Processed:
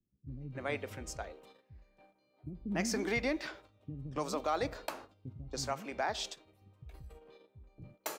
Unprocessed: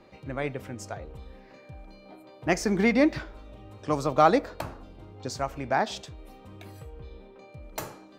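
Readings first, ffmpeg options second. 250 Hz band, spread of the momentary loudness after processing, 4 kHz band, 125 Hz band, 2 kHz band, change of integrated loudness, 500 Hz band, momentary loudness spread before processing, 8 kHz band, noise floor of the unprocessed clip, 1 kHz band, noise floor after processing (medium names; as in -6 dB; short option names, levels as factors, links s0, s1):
-11.5 dB, 20 LU, -3.0 dB, -8.0 dB, -7.0 dB, -10.5 dB, -10.0 dB, 24 LU, -2.0 dB, -52 dBFS, -11.5 dB, -74 dBFS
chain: -filter_complex "[0:a]agate=range=0.141:threshold=0.00794:ratio=16:detection=peak,alimiter=limit=0.133:level=0:latency=1:release=172,acrossover=split=250[s0][s1];[s1]adelay=280[s2];[s0][s2]amix=inputs=2:normalize=0,adynamicequalizer=threshold=0.00562:dfrequency=2000:dqfactor=0.7:tfrequency=2000:tqfactor=0.7:attack=5:release=100:ratio=0.375:range=2.5:mode=boostabove:tftype=highshelf,volume=0.596"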